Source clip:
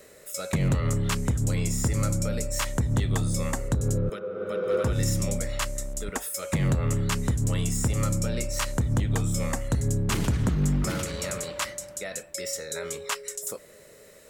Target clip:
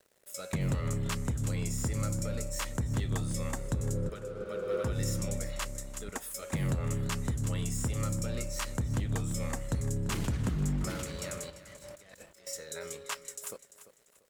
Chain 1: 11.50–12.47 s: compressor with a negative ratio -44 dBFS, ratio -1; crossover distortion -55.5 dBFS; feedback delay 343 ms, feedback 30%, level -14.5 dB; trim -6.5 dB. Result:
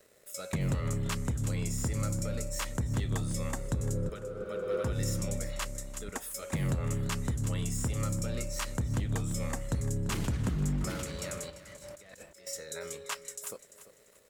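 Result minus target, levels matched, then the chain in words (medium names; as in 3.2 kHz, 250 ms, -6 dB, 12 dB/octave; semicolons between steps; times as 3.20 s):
crossover distortion: distortion -6 dB
11.50–12.47 s: compressor with a negative ratio -44 dBFS, ratio -1; crossover distortion -49 dBFS; feedback delay 343 ms, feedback 30%, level -14.5 dB; trim -6.5 dB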